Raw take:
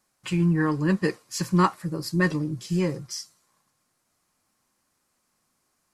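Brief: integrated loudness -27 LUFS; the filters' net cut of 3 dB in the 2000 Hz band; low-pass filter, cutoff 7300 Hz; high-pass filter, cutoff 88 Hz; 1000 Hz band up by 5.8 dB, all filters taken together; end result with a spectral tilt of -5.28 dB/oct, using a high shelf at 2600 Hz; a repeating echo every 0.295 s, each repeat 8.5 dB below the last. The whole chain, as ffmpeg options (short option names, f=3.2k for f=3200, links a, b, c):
-af "highpass=88,lowpass=7.3k,equalizer=f=1k:t=o:g=8.5,equalizer=f=2k:t=o:g=-5,highshelf=f=2.6k:g=-3.5,aecho=1:1:295|590|885|1180:0.376|0.143|0.0543|0.0206,volume=-3dB"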